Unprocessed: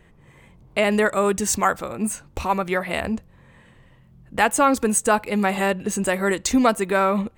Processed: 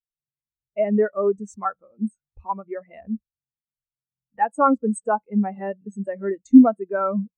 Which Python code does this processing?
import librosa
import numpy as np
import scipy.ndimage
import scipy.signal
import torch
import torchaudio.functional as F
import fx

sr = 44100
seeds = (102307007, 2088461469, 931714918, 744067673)

y = fx.hum_notches(x, sr, base_hz=60, count=3)
y = fx.spectral_expand(y, sr, expansion=2.5)
y = F.gain(torch.from_numpy(y), 3.5).numpy()